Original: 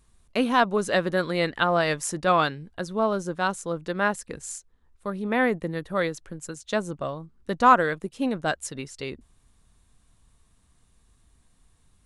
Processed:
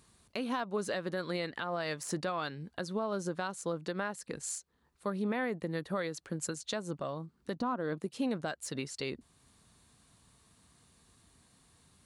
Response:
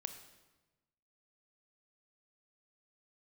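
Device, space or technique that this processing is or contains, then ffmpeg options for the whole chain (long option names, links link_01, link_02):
broadcast voice chain: -filter_complex "[0:a]asettb=1/sr,asplit=3[link_01][link_02][link_03];[link_01]atrim=end=7.564[link_04];[link_02]atrim=start=7.56:end=7.98,asetpts=PTS-STARTPTS,afade=type=in:duration=0.004:curve=qsin,afade=type=out:start_time=0.416:duration=0.004:curve=qsin,equalizer=frequency=125:width_type=o:width=1:gain=3,equalizer=frequency=250:width_type=o:width=1:gain=10,equalizer=frequency=1000:width_type=o:width=1:gain=3,equalizer=frequency=2000:width_type=o:width=1:gain=-8,equalizer=frequency=8000:width_type=o:width=1:gain=-12[link_05];[link_03]atrim=start=7.976[link_06];[link_04][link_05]acrossfade=duration=0.004:curve1=hsin:curve2=qsin[link_07];[link_07][link_06]acrossfade=duration=0.004:curve1=qsin:curve2=hsin,highpass=110,deesser=0.6,acompressor=threshold=-28dB:ratio=3,equalizer=frequency=4400:width_type=o:width=0.22:gain=6,alimiter=level_in=3.5dB:limit=-24dB:level=0:latency=1:release=471,volume=-3.5dB,volume=3dB"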